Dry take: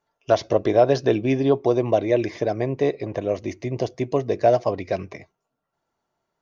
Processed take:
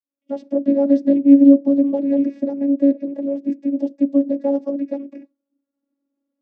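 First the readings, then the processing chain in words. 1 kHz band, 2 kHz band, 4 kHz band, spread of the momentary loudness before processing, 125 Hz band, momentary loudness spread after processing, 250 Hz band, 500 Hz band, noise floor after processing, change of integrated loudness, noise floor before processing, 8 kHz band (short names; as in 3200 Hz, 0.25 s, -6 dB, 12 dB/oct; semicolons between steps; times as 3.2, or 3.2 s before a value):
under -10 dB, under -15 dB, under -15 dB, 9 LU, under -15 dB, 14 LU, +12.0 dB, -3.0 dB, -83 dBFS, +5.0 dB, -80 dBFS, n/a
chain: opening faded in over 0.58 s; resonant low shelf 570 Hz +11.5 dB, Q 3; vocoder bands 16, saw 279 Hz; gain -8.5 dB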